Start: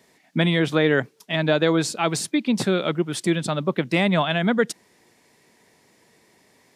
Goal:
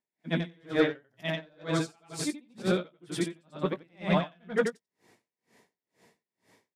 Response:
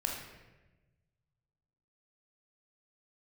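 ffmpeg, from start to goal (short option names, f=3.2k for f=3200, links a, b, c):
-filter_complex "[0:a]afftfilt=real='re':imag='-im':win_size=8192:overlap=0.75,highpass=80,highshelf=f=3.9k:g=-4.5,bandreject=f=60:t=h:w=6,bandreject=f=120:t=h:w=6,asoftclip=type=tanh:threshold=-14.5dB,asplit=2[a][b];[b]adelay=17,volume=-10.5dB[c];[a][c]amix=inputs=2:normalize=0,aeval=exprs='val(0)*pow(10,-38*(0.5-0.5*cos(2*PI*2.1*n/s))/20)':c=same,volume=2.5dB"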